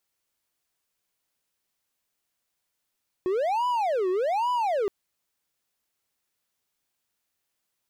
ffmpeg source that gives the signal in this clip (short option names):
-f lavfi -i "aevalsrc='0.0944*(1-4*abs(mod((677.5*t-313.5/(2*PI*1.2)*sin(2*PI*1.2*t))+0.25,1)-0.5))':d=1.62:s=44100"